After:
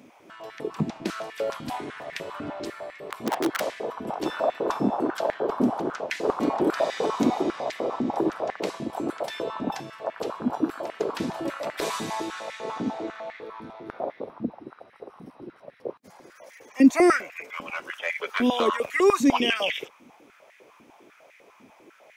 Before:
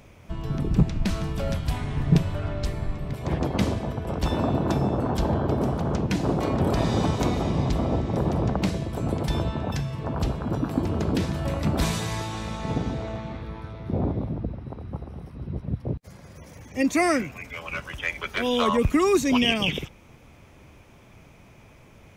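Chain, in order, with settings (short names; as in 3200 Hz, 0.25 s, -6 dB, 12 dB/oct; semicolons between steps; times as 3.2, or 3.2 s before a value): 3.05–3.6 wrapped overs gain 18.5 dB; stepped high-pass 10 Hz 250–1900 Hz; gain -3 dB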